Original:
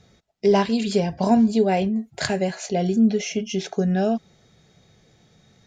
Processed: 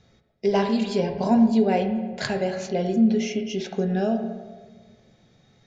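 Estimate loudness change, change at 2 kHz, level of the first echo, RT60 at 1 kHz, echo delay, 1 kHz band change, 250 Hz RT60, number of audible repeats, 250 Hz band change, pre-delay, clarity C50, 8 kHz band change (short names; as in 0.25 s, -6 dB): -1.5 dB, -2.0 dB, none, 1.3 s, none, -2.5 dB, 1.8 s, none, -1.0 dB, 3 ms, 8.5 dB, -6.5 dB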